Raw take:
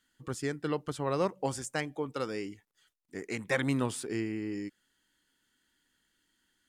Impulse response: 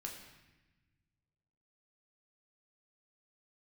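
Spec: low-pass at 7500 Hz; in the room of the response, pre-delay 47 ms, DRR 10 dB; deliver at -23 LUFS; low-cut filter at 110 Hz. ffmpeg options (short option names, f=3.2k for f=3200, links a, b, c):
-filter_complex "[0:a]highpass=110,lowpass=7.5k,asplit=2[a][b];[1:a]atrim=start_sample=2205,adelay=47[c];[b][c]afir=irnorm=-1:irlink=0,volume=-7.5dB[d];[a][d]amix=inputs=2:normalize=0,volume=11dB"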